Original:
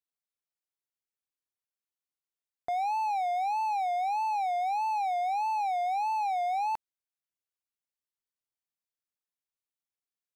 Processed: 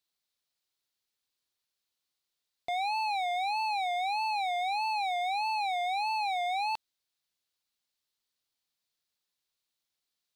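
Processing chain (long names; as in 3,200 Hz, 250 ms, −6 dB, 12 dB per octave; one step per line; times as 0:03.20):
hard clipping −36 dBFS, distortion −8 dB
parametric band 4,100 Hz +10 dB 0.91 octaves
level +5.5 dB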